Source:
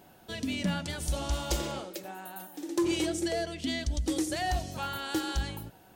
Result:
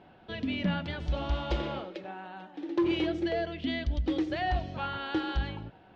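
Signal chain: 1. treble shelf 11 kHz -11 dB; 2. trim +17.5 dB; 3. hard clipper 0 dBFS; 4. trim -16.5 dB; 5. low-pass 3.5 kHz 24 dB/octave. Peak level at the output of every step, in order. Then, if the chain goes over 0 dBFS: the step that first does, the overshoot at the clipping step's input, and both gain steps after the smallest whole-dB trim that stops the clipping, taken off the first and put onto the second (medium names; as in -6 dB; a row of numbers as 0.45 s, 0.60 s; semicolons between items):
-22.0 dBFS, -4.5 dBFS, -4.5 dBFS, -21.0 dBFS, -21.0 dBFS; nothing clips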